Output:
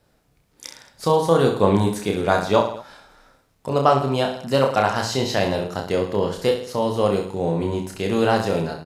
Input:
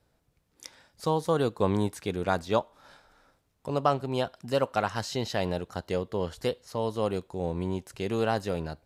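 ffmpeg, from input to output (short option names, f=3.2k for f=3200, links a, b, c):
-af "equalizer=f=77:w=3.3:g=-9.5,aecho=1:1:30|66|109.2|161|223.2:0.631|0.398|0.251|0.158|0.1,volume=7dB"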